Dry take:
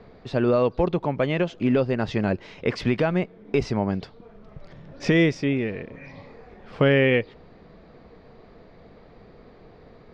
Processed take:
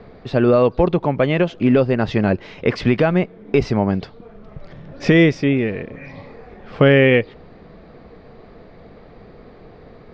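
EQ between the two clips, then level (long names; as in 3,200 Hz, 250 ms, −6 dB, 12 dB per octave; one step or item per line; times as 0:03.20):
high-frequency loss of the air 75 metres
notch filter 950 Hz, Q 27
+6.5 dB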